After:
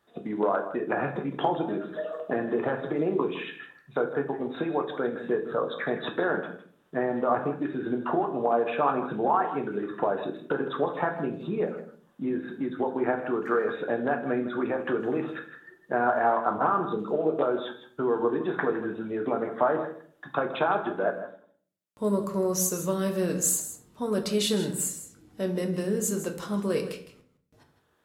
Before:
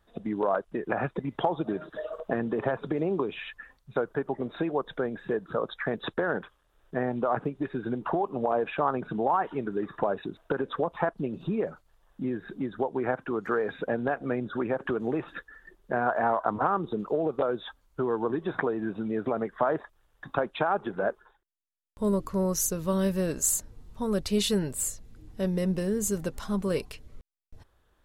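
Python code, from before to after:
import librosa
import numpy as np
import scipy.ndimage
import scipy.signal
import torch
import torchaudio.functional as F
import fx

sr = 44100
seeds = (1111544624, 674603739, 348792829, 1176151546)

y = scipy.signal.sosfilt(scipy.signal.butter(2, 170.0, 'highpass', fs=sr, output='sos'), x)
y = y + 10.0 ** (-12.5 / 20.0) * np.pad(y, (int(159 * sr / 1000.0), 0))[:len(y)]
y = fx.room_shoebox(y, sr, seeds[0], volume_m3=52.0, walls='mixed', distance_m=0.39)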